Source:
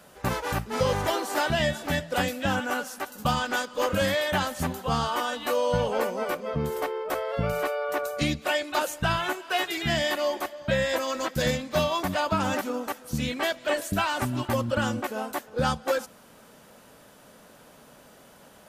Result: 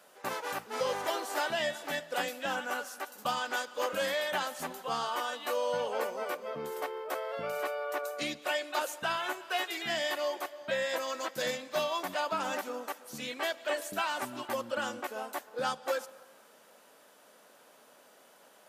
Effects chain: HPF 380 Hz 12 dB/oct; on a send: reverb RT60 1.6 s, pre-delay 0.102 s, DRR 21 dB; on the sum: gain -5.5 dB

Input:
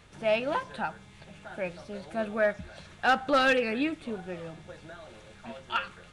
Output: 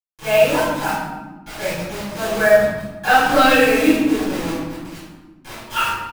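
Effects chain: comb 6.5 ms, depth 53%; bit-crush 6-bit; reverb RT60 1.3 s, pre-delay 3 ms, DRR -13.5 dB; gain -10 dB

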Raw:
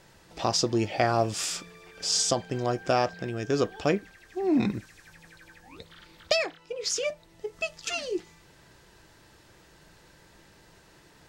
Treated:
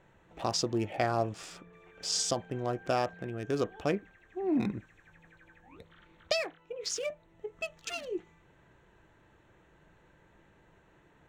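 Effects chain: Wiener smoothing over 9 samples; 1.29–1.73 high shelf 2300 Hz -12 dB; gain -5 dB

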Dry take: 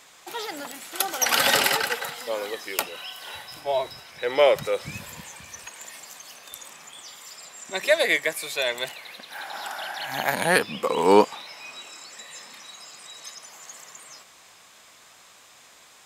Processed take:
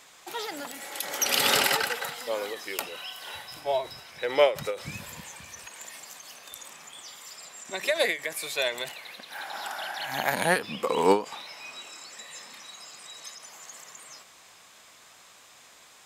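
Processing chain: spectral repair 0.78–1.54, 320–2300 Hz both; ending taper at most 180 dB/s; gain -1.5 dB

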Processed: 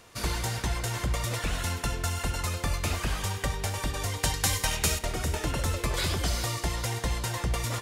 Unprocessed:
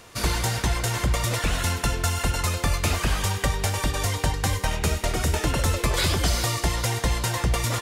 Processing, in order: 4.23–4.99 high shelf 2100 Hz +11 dB; on a send: flutter echo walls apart 11.8 m, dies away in 0.22 s; on the sum: gain -6 dB

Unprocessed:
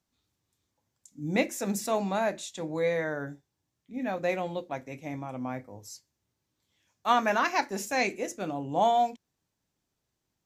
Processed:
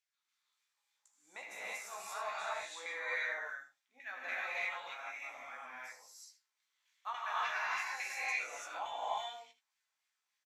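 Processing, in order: HPF 230 Hz 6 dB/oct; differentiator; compressor, threshold -44 dBFS, peak gain reduction 12 dB; hard clip -33 dBFS, distortion -42 dB; LFO band-pass saw down 3.5 Hz 850–2300 Hz; doubler 16 ms -5.5 dB; on a send: echo 78 ms -14 dB; on the sum: non-linear reverb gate 0.37 s rising, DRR -7.5 dB; gain +9 dB

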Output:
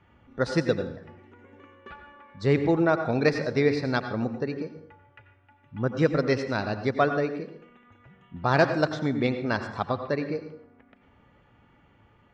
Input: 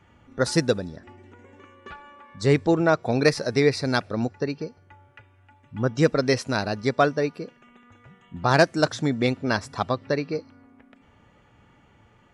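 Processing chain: LPF 3700 Hz 12 dB/oct; plate-style reverb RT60 0.58 s, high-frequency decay 0.6×, pre-delay 75 ms, DRR 8.5 dB; gain -3 dB

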